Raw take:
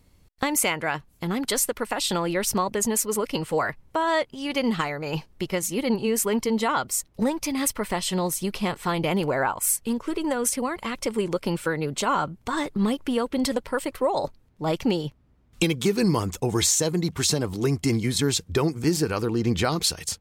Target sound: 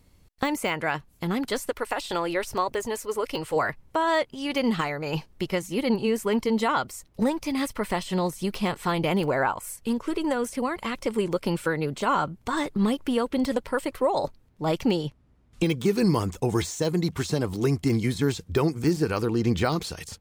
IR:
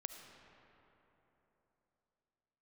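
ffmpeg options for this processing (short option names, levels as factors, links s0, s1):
-filter_complex "[0:a]asettb=1/sr,asplit=3[s0][s1][s2];[s0]atrim=end=1.704[s3];[s1]atrim=start=1.7:end=3.56,asetpts=PTS-STARTPTS,afade=t=in:d=0.004:c=qsin,afade=t=out:st=1.856:d=0.004:c=qsin,equalizer=f=200:w=2.5:g=-14.5[s4];[s2]atrim=start=3.556[s5];[s3][s4]acrossfade=d=0.004:c1=hsin:c2=qsin[s6];[s6][s5]acrossfade=d=0.004:c1=qsin:c2=hsin,asettb=1/sr,asplit=3[s7][s8][s9];[s7]atrim=end=14.964[s10];[s8]atrim=start=14.96:end=15.75,asetpts=PTS-STARTPTS,afade=t=in:d=0.004:c=qsin,afade=t=out:st=0.786:d=0.004:c=qsin,lowpass=f=12000:w=0.5412,lowpass=f=12000:w=1.3066[s11];[s9]atrim=start=15.746[s12];[s10][s11]acrossfade=d=0.004:c1=hsin:c2=qsin[s13];[s13][s12]acrossfade=d=0.004:c1=qsin:c2=hsin,deesser=0.75"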